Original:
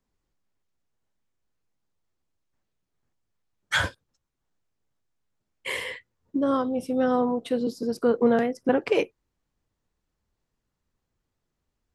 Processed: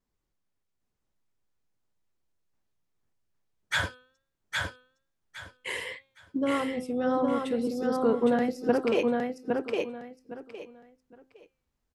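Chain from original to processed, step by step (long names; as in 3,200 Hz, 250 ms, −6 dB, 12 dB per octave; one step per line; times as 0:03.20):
hum removal 260.9 Hz, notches 17
pitch vibrato 1.7 Hz 65 cents
on a send: repeating echo 812 ms, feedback 23%, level −3 dB
on the sum: level −3.5 dB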